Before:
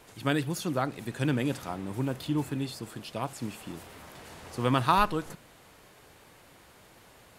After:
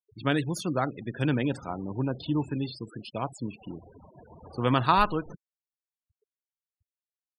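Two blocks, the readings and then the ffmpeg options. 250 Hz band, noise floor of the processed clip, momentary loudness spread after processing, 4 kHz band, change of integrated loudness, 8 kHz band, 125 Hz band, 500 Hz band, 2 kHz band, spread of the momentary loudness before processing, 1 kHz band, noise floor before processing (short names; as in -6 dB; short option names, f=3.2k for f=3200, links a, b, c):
+1.5 dB, under -85 dBFS, 17 LU, +0.5 dB, +1.5 dB, -3.5 dB, +1.5 dB, +1.5 dB, +1.0 dB, 20 LU, +1.5 dB, -56 dBFS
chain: -af "afftfilt=real='re*gte(hypot(re,im),0.0126)':imag='im*gte(hypot(re,im),0.0126)':win_size=1024:overlap=0.75,volume=1.5dB"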